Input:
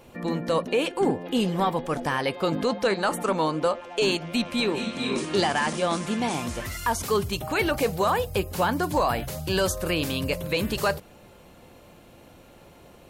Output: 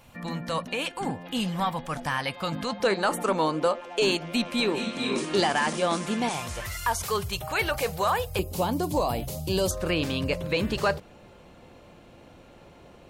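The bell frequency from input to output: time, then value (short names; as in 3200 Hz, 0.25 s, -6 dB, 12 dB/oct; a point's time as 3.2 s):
bell -14.5 dB 0.98 oct
390 Hz
from 2.8 s 69 Hz
from 6.29 s 270 Hz
from 8.39 s 1600 Hz
from 9.71 s 13000 Hz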